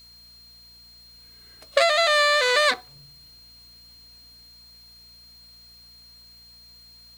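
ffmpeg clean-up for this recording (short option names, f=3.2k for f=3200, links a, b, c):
-af "bandreject=f=58.6:t=h:w=4,bandreject=f=117.2:t=h:w=4,bandreject=f=175.8:t=h:w=4,bandreject=f=234.4:t=h:w=4,bandreject=f=4.2k:w=30,agate=range=-21dB:threshold=-42dB"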